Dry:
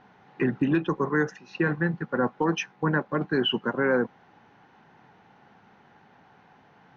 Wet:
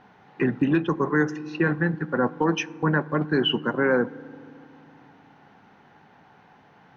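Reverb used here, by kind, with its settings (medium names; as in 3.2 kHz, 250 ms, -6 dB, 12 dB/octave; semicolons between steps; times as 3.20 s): FDN reverb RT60 2.4 s, low-frequency decay 1.55×, high-frequency decay 0.3×, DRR 19.5 dB; trim +2 dB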